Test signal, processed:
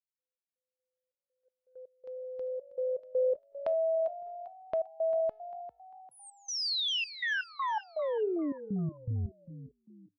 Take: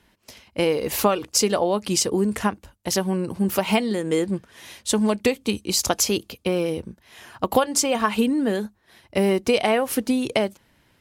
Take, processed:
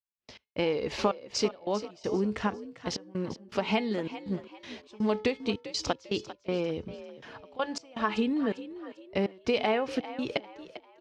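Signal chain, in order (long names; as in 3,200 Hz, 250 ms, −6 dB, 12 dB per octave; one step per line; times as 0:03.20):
noise gate −48 dBFS, range −26 dB
low-pass filter 5,100 Hz 24 dB per octave
in parallel at 0 dB: downward compressor, threshold −30 dBFS
on the sum: tuned comb filter 430 Hz, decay 0.42 s, mix 60%
gate pattern ".x.xxx.x" 81 BPM −24 dB
on a send: echo with shifted repeats 397 ms, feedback 35%, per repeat +51 Hz, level −14 dB
on the sum: level −1.5 dB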